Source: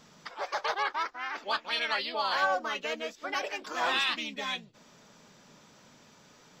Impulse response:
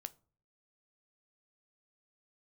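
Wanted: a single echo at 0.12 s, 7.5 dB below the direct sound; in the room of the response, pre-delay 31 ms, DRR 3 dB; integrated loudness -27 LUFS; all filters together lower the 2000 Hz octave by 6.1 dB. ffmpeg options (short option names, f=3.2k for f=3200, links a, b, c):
-filter_complex "[0:a]equalizer=f=2k:t=o:g=-8.5,aecho=1:1:120:0.422,asplit=2[a][b];[1:a]atrim=start_sample=2205,adelay=31[c];[b][c]afir=irnorm=-1:irlink=0,volume=1dB[d];[a][d]amix=inputs=2:normalize=0,volume=4.5dB"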